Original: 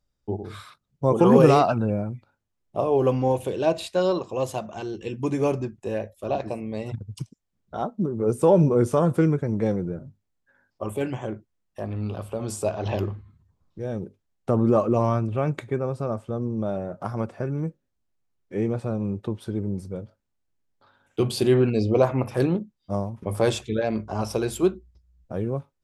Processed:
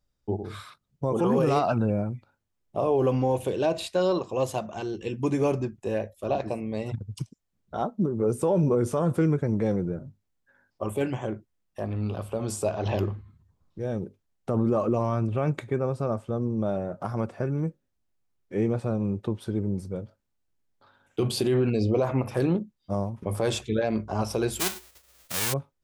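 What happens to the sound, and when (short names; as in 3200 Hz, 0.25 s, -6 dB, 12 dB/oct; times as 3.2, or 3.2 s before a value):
24.59–25.52 spectral whitening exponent 0.1
whole clip: limiter -15 dBFS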